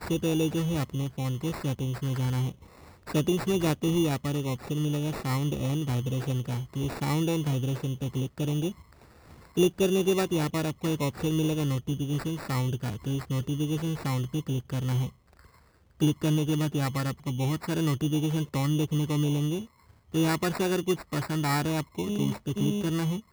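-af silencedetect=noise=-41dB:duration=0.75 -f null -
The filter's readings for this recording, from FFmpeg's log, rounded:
silence_start: 15.09
silence_end: 16.00 | silence_duration: 0.91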